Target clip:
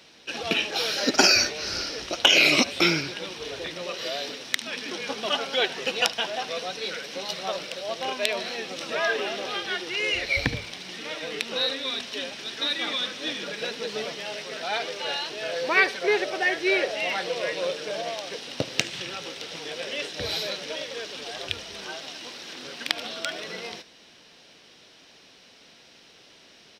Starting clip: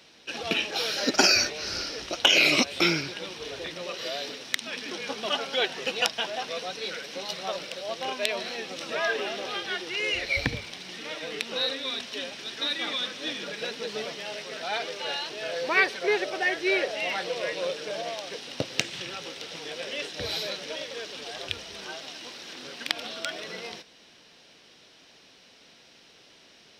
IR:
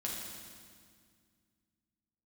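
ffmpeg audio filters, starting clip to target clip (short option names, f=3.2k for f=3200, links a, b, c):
-af "aecho=1:1:74:0.1,volume=2dB"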